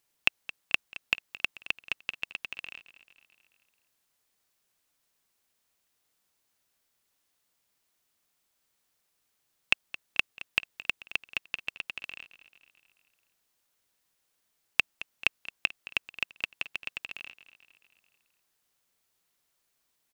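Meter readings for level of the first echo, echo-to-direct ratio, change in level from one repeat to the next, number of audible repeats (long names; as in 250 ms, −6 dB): −16.5 dB, −15.0 dB, −5.0 dB, 4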